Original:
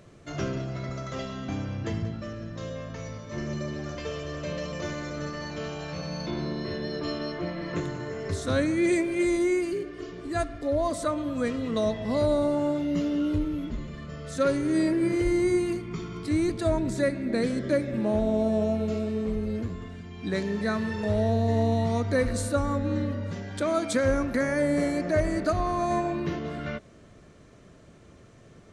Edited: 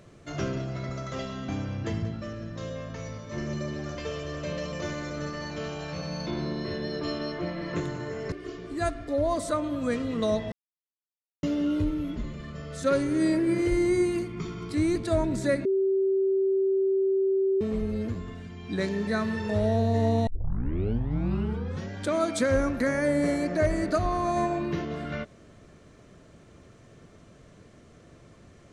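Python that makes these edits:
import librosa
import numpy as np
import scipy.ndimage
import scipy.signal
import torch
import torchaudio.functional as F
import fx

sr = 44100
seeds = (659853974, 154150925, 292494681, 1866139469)

y = fx.edit(x, sr, fx.cut(start_s=8.32, length_s=1.54),
    fx.silence(start_s=12.06, length_s=0.91),
    fx.bleep(start_s=17.19, length_s=1.96, hz=386.0, db=-21.0),
    fx.tape_start(start_s=21.81, length_s=1.63), tone=tone)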